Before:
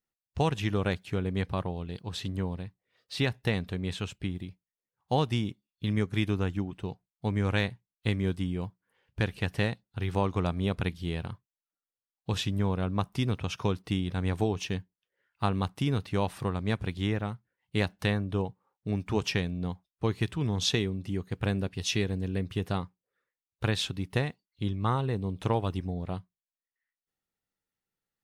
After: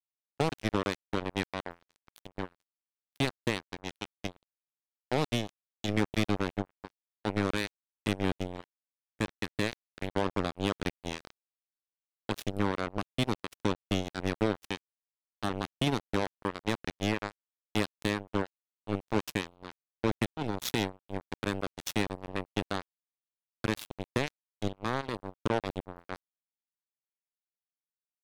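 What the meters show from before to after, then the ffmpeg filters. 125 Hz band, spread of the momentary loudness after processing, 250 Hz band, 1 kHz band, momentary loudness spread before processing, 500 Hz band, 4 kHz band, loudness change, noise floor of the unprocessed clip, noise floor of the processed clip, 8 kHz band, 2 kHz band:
-8.0 dB, 11 LU, -2.0 dB, -0.5 dB, 8 LU, -1.0 dB, -2.5 dB, -2.5 dB, under -85 dBFS, under -85 dBFS, -2.0 dB, 0.0 dB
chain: -filter_complex "[0:a]highpass=f=70:p=1,acrossover=split=430|5100[a][b][c];[b]alimiter=level_in=2dB:limit=-24dB:level=0:latency=1:release=42,volume=-2dB[d];[a][d][c]amix=inputs=3:normalize=0,acrusher=bits=3:mix=0:aa=0.5"

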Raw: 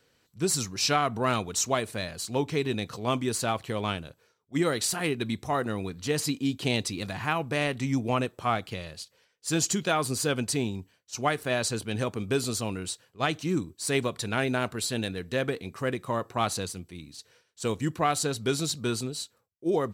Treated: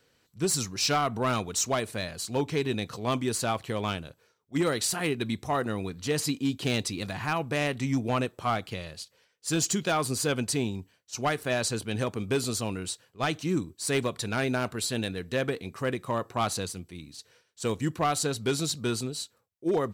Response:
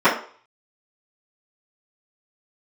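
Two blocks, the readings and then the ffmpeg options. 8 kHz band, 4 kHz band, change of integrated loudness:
0.0 dB, -0.5 dB, -0.5 dB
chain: -af "asoftclip=type=hard:threshold=-19.5dB"

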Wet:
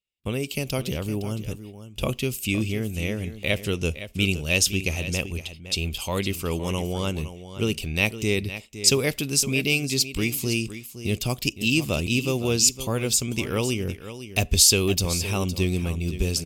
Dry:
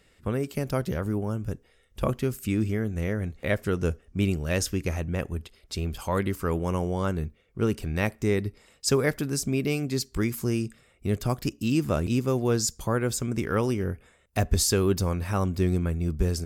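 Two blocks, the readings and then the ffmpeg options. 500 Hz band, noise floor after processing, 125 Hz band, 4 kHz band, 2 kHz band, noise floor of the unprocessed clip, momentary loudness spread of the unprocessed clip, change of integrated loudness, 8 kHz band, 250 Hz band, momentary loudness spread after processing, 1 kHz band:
0.0 dB, -45 dBFS, 0.0 dB, +11.5 dB, +7.5 dB, -62 dBFS, 7 LU, +3.5 dB, +9.5 dB, 0.0 dB, 10 LU, -2.5 dB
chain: -filter_complex "[0:a]agate=range=-37dB:threshold=-49dB:ratio=16:detection=peak,highshelf=f=2.1k:t=q:w=3:g=8.5,asplit=2[a][b];[b]aecho=0:1:512:0.237[c];[a][c]amix=inputs=2:normalize=0"

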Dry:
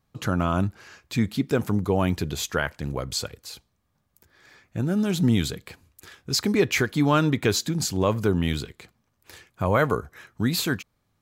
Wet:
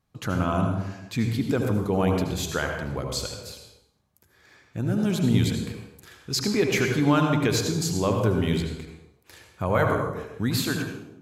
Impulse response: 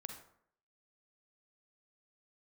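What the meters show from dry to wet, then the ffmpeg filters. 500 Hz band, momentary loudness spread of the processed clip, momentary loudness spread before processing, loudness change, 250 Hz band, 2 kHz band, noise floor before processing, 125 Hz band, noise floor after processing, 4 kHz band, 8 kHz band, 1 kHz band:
0.0 dB, 12 LU, 10 LU, -0.5 dB, 0.0 dB, -1.0 dB, -73 dBFS, +0.5 dB, -64 dBFS, -1.5 dB, -1.0 dB, 0.0 dB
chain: -filter_complex "[1:a]atrim=start_sample=2205,afade=t=out:st=0.38:d=0.01,atrim=end_sample=17199,asetrate=26019,aresample=44100[a];[0:a][a]afir=irnorm=-1:irlink=0"

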